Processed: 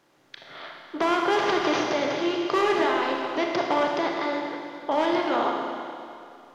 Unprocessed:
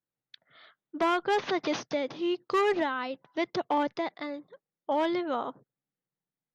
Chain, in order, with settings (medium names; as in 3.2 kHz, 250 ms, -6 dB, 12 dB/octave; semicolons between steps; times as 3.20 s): spectral levelling over time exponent 0.6; Schroeder reverb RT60 2.5 s, combs from 26 ms, DRR 0 dB